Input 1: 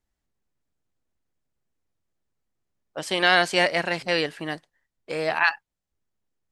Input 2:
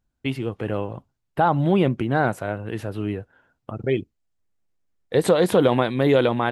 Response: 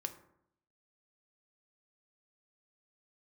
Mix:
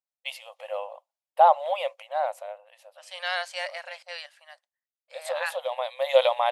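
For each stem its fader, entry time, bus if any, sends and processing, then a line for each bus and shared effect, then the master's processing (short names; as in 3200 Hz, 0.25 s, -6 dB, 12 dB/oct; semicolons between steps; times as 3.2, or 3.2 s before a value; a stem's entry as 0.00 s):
-10.5 dB, 0.00 s, no send, dry
+2.0 dB, 0.00 s, no send, bell 1500 Hz -14.5 dB 0.64 oct; auto duck -10 dB, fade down 1.30 s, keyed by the first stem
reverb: off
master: brick-wall FIR high-pass 510 Hz; three-band expander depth 40%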